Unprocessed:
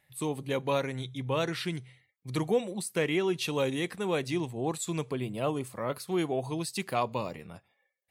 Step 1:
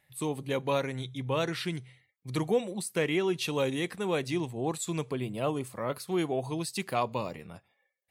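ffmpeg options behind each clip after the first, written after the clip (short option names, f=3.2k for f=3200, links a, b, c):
-af anull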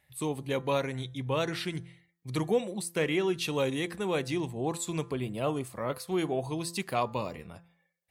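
-af "equalizer=f=66:w=5.4:g=14.5,bandreject=f=170.4:t=h:w=4,bandreject=f=340.8:t=h:w=4,bandreject=f=511.2:t=h:w=4,bandreject=f=681.6:t=h:w=4,bandreject=f=852:t=h:w=4,bandreject=f=1.0224k:t=h:w=4,bandreject=f=1.1928k:t=h:w=4,bandreject=f=1.3632k:t=h:w=4,bandreject=f=1.5336k:t=h:w=4,bandreject=f=1.704k:t=h:w=4,bandreject=f=1.8744k:t=h:w=4"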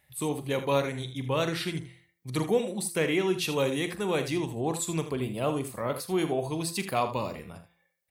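-af "highshelf=f=11k:g=7,aecho=1:1:43|79:0.237|0.266,volume=1.5dB"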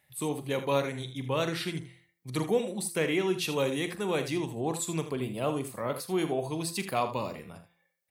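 -af "highpass=92,volume=-1.5dB"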